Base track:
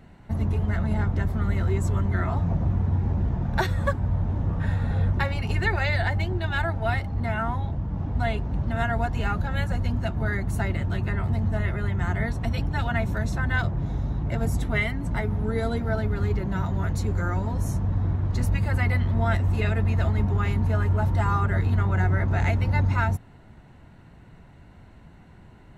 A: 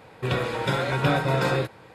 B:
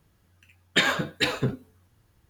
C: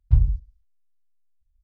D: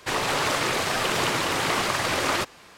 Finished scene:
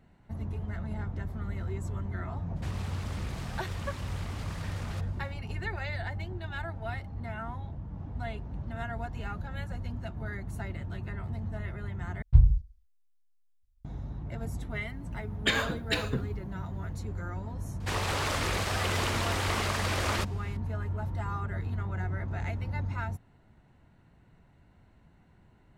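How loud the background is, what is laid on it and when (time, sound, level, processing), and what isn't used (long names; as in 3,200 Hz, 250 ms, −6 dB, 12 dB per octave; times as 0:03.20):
base track −11 dB
0:02.56: mix in D −10 dB + output level in coarse steps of 18 dB
0:12.22: overwrite with C −1.5 dB
0:14.70: mix in B −5.5 dB
0:17.80: mix in D −7 dB
not used: A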